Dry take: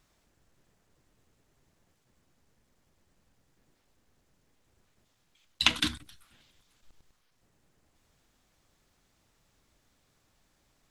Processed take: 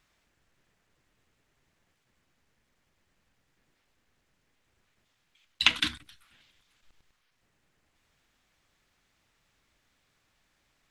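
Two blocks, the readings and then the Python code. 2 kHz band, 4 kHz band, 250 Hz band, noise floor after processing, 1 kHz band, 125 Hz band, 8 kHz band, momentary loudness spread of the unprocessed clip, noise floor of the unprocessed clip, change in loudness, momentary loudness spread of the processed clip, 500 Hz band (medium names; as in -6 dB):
+3.0 dB, +1.0 dB, -4.5 dB, -75 dBFS, -0.5 dB, -5.0 dB, -3.0 dB, 6 LU, -72 dBFS, +1.5 dB, 7 LU, -3.5 dB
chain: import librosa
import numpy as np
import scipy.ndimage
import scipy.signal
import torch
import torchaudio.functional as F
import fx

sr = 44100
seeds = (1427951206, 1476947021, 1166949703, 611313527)

y = fx.peak_eq(x, sr, hz=2200.0, db=8.5, octaves=2.0)
y = y * librosa.db_to_amplitude(-5.0)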